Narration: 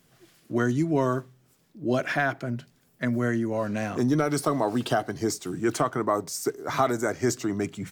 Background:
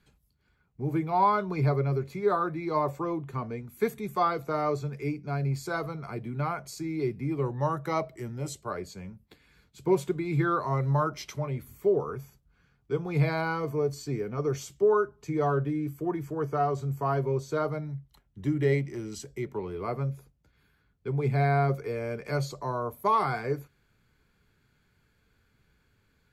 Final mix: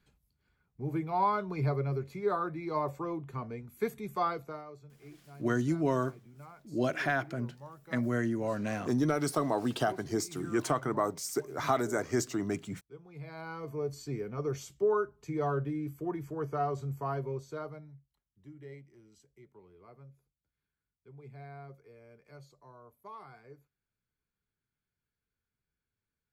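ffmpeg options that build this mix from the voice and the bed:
ffmpeg -i stem1.wav -i stem2.wav -filter_complex "[0:a]adelay=4900,volume=-5dB[link_01];[1:a]volume=10.5dB,afade=type=out:start_time=4.3:duration=0.35:silence=0.16788,afade=type=in:start_time=13.23:duration=0.8:silence=0.16788,afade=type=out:start_time=16.82:duration=1.33:silence=0.125893[link_02];[link_01][link_02]amix=inputs=2:normalize=0" out.wav

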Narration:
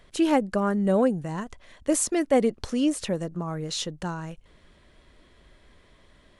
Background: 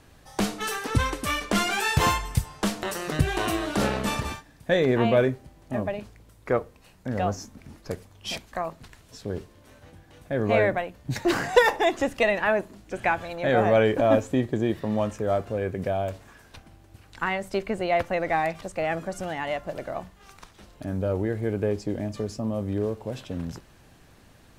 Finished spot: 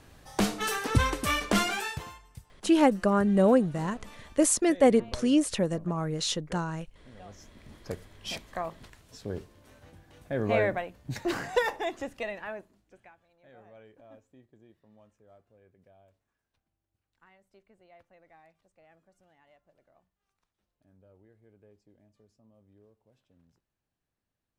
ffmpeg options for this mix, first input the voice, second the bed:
ffmpeg -i stem1.wav -i stem2.wav -filter_complex "[0:a]adelay=2500,volume=0.5dB[link_01];[1:a]volume=18.5dB,afade=type=out:start_time=1.52:duration=0.52:silence=0.0749894,afade=type=in:start_time=7.28:duration=0.56:silence=0.112202,afade=type=out:start_time=10.52:duration=2.59:silence=0.0334965[link_02];[link_01][link_02]amix=inputs=2:normalize=0" out.wav

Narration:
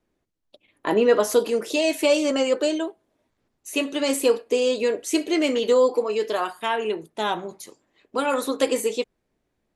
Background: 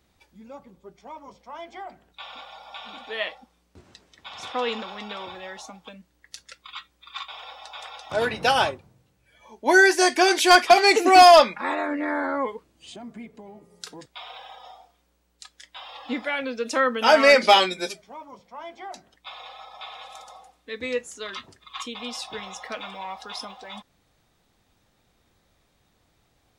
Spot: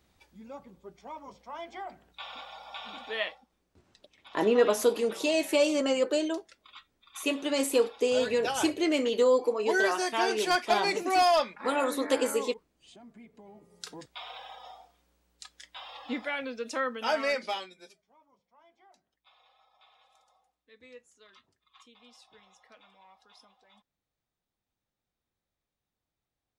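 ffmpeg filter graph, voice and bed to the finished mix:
ffmpeg -i stem1.wav -i stem2.wav -filter_complex "[0:a]adelay=3500,volume=-5dB[link_01];[1:a]volume=7.5dB,afade=type=out:start_time=3.17:duration=0.27:silence=0.316228,afade=type=in:start_time=13.21:duration=0.75:silence=0.334965,afade=type=out:start_time=15.58:duration=2.1:silence=0.0944061[link_02];[link_01][link_02]amix=inputs=2:normalize=0" out.wav

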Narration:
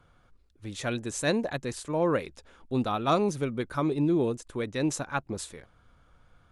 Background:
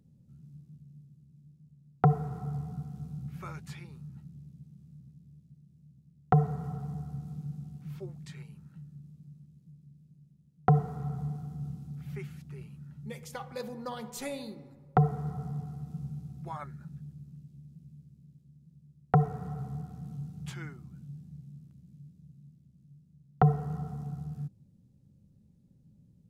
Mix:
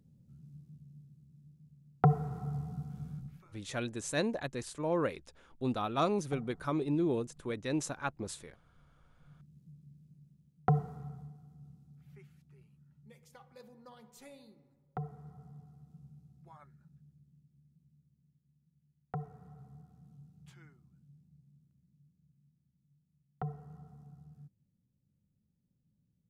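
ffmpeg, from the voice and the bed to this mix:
ffmpeg -i stem1.wav -i stem2.wav -filter_complex "[0:a]adelay=2900,volume=-5.5dB[link_01];[1:a]volume=18.5dB,afade=type=out:start_time=3.11:duration=0.34:silence=0.1,afade=type=in:start_time=9.14:duration=0.45:silence=0.0944061,afade=type=out:start_time=10.29:duration=1.04:silence=0.188365[link_02];[link_01][link_02]amix=inputs=2:normalize=0" out.wav

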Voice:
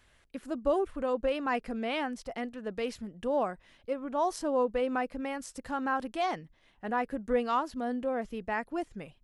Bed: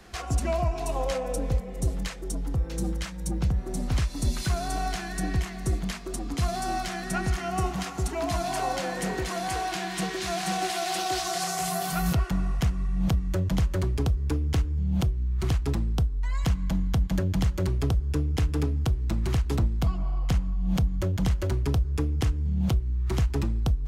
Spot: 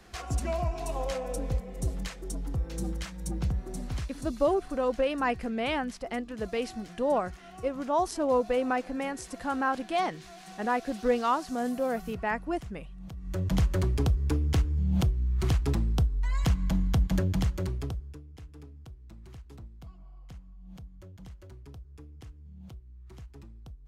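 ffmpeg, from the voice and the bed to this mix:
ffmpeg -i stem1.wav -i stem2.wav -filter_complex "[0:a]adelay=3750,volume=2.5dB[link_01];[1:a]volume=14dB,afade=type=out:start_time=3.5:duration=0.96:silence=0.188365,afade=type=in:start_time=13.15:duration=0.42:silence=0.125893,afade=type=out:start_time=17.18:duration=1.02:silence=0.0841395[link_02];[link_01][link_02]amix=inputs=2:normalize=0" out.wav

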